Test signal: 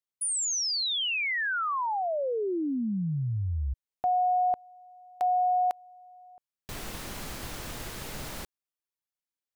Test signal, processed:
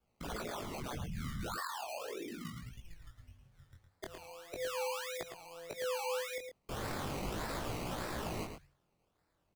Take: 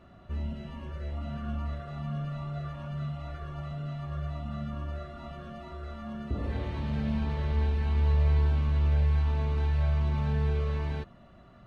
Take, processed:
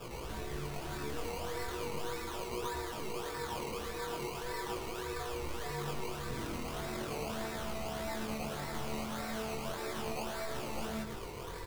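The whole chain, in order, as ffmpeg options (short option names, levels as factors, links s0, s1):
-filter_complex "[0:a]bandreject=f=400:w=12,afftfilt=real='re*lt(hypot(re,im),0.0891)':imag='im*lt(hypot(re,im),0.0891)':win_size=1024:overlap=0.75,highpass=190,bandreject=f=60:t=h:w=6,bandreject=f=120:t=h:w=6,bandreject=f=180:t=h:w=6,bandreject=f=240:t=h:w=6,bandreject=f=300:t=h:w=6,bandreject=f=360:t=h:w=6,acompressor=threshold=0.00398:ratio=6:attack=0.16:release=73:knee=1:detection=rms,acrusher=samples=19:mix=1:aa=0.000001:lfo=1:lforange=11.4:lforate=1.7,afreqshift=-220,flanger=delay=16.5:depth=7:speed=0.38,asplit=2[s0][s1];[s1]adelay=110.8,volume=0.447,highshelf=f=4000:g=-2.49[s2];[s0][s2]amix=inputs=2:normalize=0,volume=7.08"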